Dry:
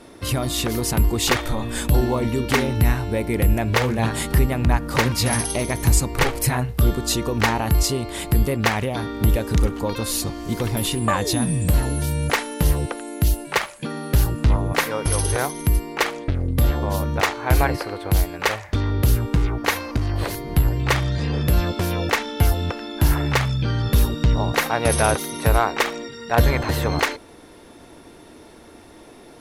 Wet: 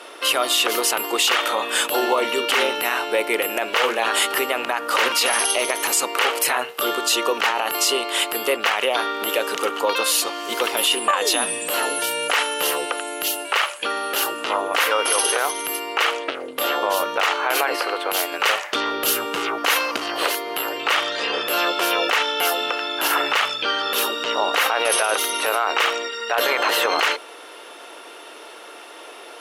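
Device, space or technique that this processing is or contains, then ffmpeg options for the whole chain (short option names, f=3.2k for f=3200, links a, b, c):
laptop speaker: -filter_complex "[0:a]highpass=f=430:w=0.5412,highpass=f=430:w=1.3066,equalizer=f=1.3k:t=o:w=0.47:g=7,equalizer=f=2.9k:t=o:w=0.42:g=10.5,alimiter=limit=-15.5dB:level=0:latency=1:release=29,asettb=1/sr,asplit=3[a][b][c];[a]atrim=end=18.324[d];[b]atrim=start=18.32:end=20.27,asetpts=PTS-STARTPTS,afade=t=in:d=0.004:c=qsin,afade=t=out:st=1.946:d=0.004:c=qsin,bass=f=250:g=9,treble=f=4k:g=4[e];[c]atrim=start=20.266[f];[d][e]acrossfade=d=0.004:c1=hsin:c2=qsin[g];[g][f]acrossfade=d=0.004:c1=qsin:c2=hsin,volume=6.5dB"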